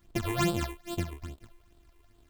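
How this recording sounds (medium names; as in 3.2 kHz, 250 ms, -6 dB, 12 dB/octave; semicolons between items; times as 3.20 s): a buzz of ramps at a fixed pitch in blocks of 128 samples; phasing stages 8, 2.4 Hz, lowest notch 180–2000 Hz; a quantiser's noise floor 12-bit, dither none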